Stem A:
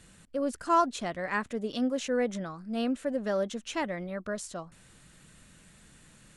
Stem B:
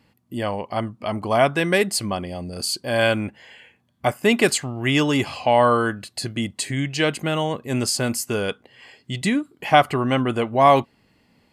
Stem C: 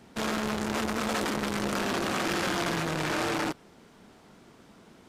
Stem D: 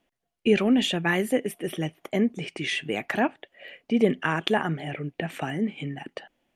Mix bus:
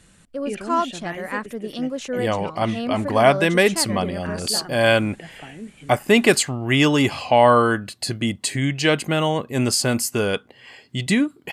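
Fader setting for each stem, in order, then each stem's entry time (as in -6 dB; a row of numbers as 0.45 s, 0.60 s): +2.5 dB, +2.5 dB, mute, -10.0 dB; 0.00 s, 1.85 s, mute, 0.00 s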